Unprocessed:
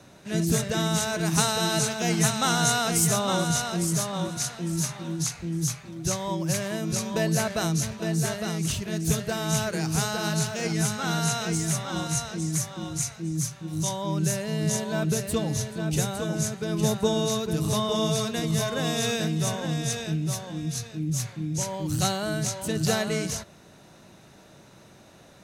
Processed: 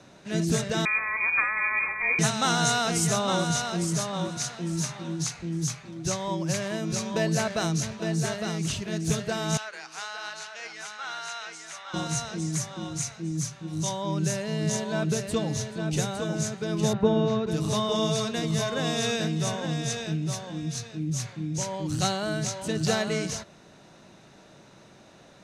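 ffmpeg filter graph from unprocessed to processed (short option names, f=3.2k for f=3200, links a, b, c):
-filter_complex "[0:a]asettb=1/sr,asplit=3[a][b][c];[a]atrim=end=0.854[d];[b]atrim=start=0.85:end=2.19,asetpts=PTS-STARTPTS,afade=t=in:d=0.004:c=qsin,afade=t=out:st=1.336:d=0.004:c=qsin,lowpass=f=2.2k:t=q:w=0.5098,lowpass=f=2.2k:t=q:w=0.6013,lowpass=f=2.2k:t=q:w=0.9,lowpass=f=2.2k:t=q:w=2.563,afreqshift=-2600,aeval=exprs='val(0)+0.00178*(sin(2*PI*60*n/s)+sin(2*PI*2*60*n/s)/2+sin(2*PI*3*60*n/s)/3+sin(2*PI*4*60*n/s)/4+sin(2*PI*5*60*n/s)/5)':c=same[e];[c]atrim=start=2.186[f];[d][e]acrossfade=d=0.004:c1=hsin:c2=qsin[g];[g][f]acrossfade=d=0.004:c1=qsin:c2=hsin,asettb=1/sr,asplit=3[h][i][j];[h]atrim=end=9.574[k];[i]atrim=start=9.57:end=11.94,asetpts=PTS-STARTPTS,afade=t=in:d=0.004:c=qsin,afade=t=out:st=2.366:d=0.004:c=qsin,highpass=1.2k,aemphasis=mode=reproduction:type=75kf[l];[j]atrim=start=11.936[m];[k][l]acrossfade=d=0.004:c1=hsin:c2=qsin[n];[n][m]acrossfade=d=0.004:c1=qsin:c2=hsin,asettb=1/sr,asplit=3[o][p][q];[o]atrim=end=16.934[r];[p]atrim=start=16.93:end=17.47,asetpts=PTS-STARTPTS,afade=t=in:d=0.004:c=qsin,afade=t=out:st=0.536:d=0.004:c=qsin,lowpass=2.4k,lowshelf=f=330:g=5.5[s];[q]atrim=start=17.466[t];[r][s]acrossfade=d=0.004:c1=hsin:c2=qsin[u];[u][t]acrossfade=d=0.004:c1=qsin:c2=hsin,lowpass=7.3k,equalizer=f=71:t=o:w=1.4:g=-6"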